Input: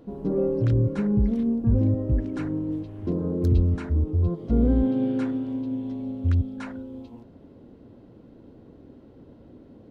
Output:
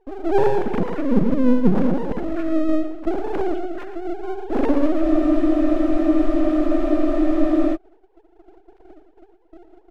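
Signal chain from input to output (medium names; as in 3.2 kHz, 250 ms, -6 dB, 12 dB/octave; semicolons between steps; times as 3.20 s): formants replaced by sine waves; half-wave rectifier; gate -50 dBFS, range -14 dB; on a send: feedback delay 115 ms, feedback 28%, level -10 dB; on the sum: spectral freeze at 5.03 s, 2.72 s; trim +6.5 dB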